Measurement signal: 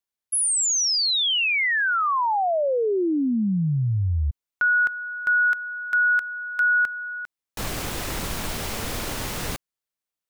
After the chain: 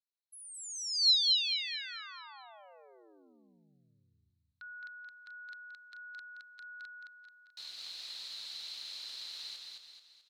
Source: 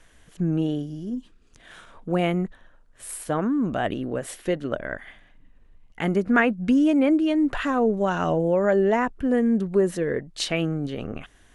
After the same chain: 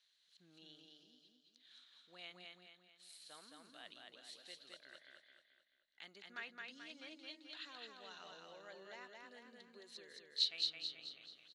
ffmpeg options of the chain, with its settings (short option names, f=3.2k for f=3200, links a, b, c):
-af "bandpass=f=4.1k:t=q:w=10:csg=0,aecho=1:1:217|434|651|868|1085|1302:0.708|0.326|0.15|0.0689|0.0317|0.0146"